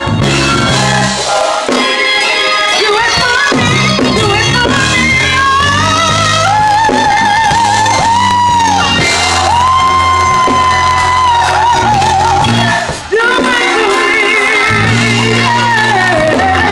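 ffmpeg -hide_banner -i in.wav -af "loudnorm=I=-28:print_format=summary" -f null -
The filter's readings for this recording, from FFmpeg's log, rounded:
Input Integrated:     -8.5 LUFS
Input True Peak:      -2.9 dBTP
Input LRA:             0.7 LU
Input Threshold:     -18.5 LUFS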